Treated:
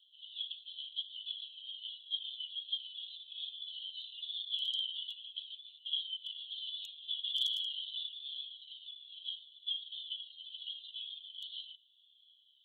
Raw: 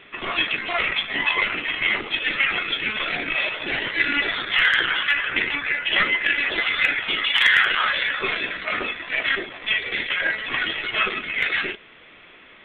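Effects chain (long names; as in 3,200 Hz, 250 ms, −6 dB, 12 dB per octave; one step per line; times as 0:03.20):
Chebyshev high-pass filter 3,000 Hz, order 10
flanger whose copies keep moving one way falling 0.26 Hz
level −5.5 dB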